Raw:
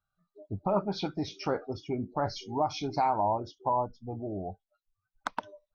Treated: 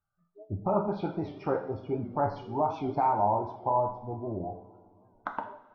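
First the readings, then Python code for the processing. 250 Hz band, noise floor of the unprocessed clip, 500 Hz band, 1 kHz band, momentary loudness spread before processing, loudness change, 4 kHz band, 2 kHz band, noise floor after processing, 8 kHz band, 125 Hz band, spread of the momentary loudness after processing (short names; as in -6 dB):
+0.5 dB, under -85 dBFS, +2.0 dB, +1.5 dB, 10 LU, +1.5 dB, under -10 dB, -2.0 dB, -72 dBFS, n/a, +2.0 dB, 12 LU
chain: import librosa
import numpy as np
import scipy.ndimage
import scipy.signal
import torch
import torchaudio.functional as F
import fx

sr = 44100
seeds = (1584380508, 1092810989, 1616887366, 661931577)

y = scipy.signal.sosfilt(scipy.signal.butter(2, 1500.0, 'lowpass', fs=sr, output='sos'), x)
y = fx.rev_double_slope(y, sr, seeds[0], early_s=0.6, late_s=3.3, knee_db=-20, drr_db=3.0)
y = fx.record_warp(y, sr, rpm=78.0, depth_cents=100.0)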